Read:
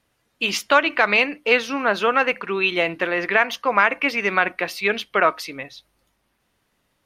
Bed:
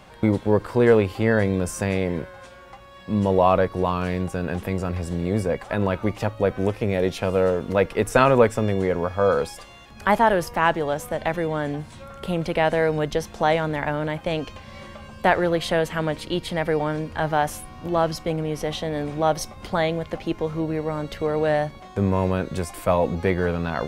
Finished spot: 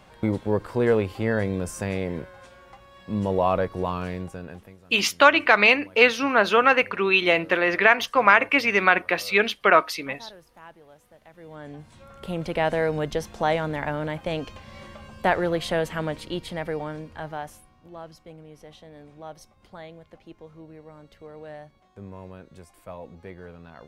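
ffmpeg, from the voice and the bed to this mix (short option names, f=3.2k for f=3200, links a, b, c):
-filter_complex "[0:a]adelay=4500,volume=1dB[a];[1:a]volume=19.5dB,afade=t=out:st=3.97:d=0.8:silence=0.0749894,afade=t=in:st=11.33:d=1.29:silence=0.0630957,afade=t=out:st=15.86:d=1.96:silence=0.149624[b];[a][b]amix=inputs=2:normalize=0"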